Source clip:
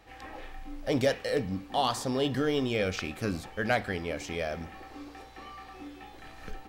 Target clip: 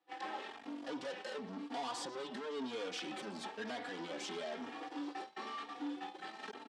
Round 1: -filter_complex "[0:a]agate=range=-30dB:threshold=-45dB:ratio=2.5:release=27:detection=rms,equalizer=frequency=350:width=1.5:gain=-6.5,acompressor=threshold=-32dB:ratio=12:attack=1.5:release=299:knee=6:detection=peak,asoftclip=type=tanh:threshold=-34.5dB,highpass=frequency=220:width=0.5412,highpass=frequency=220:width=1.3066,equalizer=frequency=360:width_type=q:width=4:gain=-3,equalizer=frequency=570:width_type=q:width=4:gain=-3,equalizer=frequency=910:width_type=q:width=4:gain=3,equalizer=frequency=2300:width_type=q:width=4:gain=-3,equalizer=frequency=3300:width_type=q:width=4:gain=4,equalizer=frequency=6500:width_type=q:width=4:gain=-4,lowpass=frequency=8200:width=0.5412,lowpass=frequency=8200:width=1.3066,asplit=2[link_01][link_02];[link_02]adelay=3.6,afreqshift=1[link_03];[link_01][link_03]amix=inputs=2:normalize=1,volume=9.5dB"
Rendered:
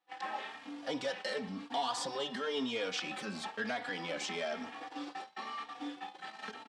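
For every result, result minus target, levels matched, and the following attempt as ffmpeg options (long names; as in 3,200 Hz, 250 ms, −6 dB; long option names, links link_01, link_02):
soft clipping: distortion −9 dB; 250 Hz band −3.0 dB
-filter_complex "[0:a]agate=range=-30dB:threshold=-45dB:ratio=2.5:release=27:detection=rms,equalizer=frequency=350:width=1.5:gain=-6.5,acompressor=threshold=-32dB:ratio=12:attack=1.5:release=299:knee=6:detection=peak,asoftclip=type=tanh:threshold=-45dB,highpass=frequency=220:width=0.5412,highpass=frequency=220:width=1.3066,equalizer=frequency=360:width_type=q:width=4:gain=-3,equalizer=frequency=570:width_type=q:width=4:gain=-3,equalizer=frequency=910:width_type=q:width=4:gain=3,equalizer=frequency=2300:width_type=q:width=4:gain=-3,equalizer=frequency=3300:width_type=q:width=4:gain=4,equalizer=frequency=6500:width_type=q:width=4:gain=-4,lowpass=frequency=8200:width=0.5412,lowpass=frequency=8200:width=1.3066,asplit=2[link_01][link_02];[link_02]adelay=3.6,afreqshift=1[link_03];[link_01][link_03]amix=inputs=2:normalize=1,volume=9.5dB"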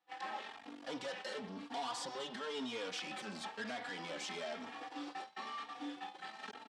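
250 Hz band −3.0 dB
-filter_complex "[0:a]agate=range=-30dB:threshold=-45dB:ratio=2.5:release=27:detection=rms,equalizer=frequency=350:width=1.5:gain=4,acompressor=threshold=-32dB:ratio=12:attack=1.5:release=299:knee=6:detection=peak,asoftclip=type=tanh:threshold=-45dB,highpass=frequency=220:width=0.5412,highpass=frequency=220:width=1.3066,equalizer=frequency=360:width_type=q:width=4:gain=-3,equalizer=frequency=570:width_type=q:width=4:gain=-3,equalizer=frequency=910:width_type=q:width=4:gain=3,equalizer=frequency=2300:width_type=q:width=4:gain=-3,equalizer=frequency=3300:width_type=q:width=4:gain=4,equalizer=frequency=6500:width_type=q:width=4:gain=-4,lowpass=frequency=8200:width=0.5412,lowpass=frequency=8200:width=1.3066,asplit=2[link_01][link_02];[link_02]adelay=3.6,afreqshift=1[link_03];[link_01][link_03]amix=inputs=2:normalize=1,volume=9.5dB"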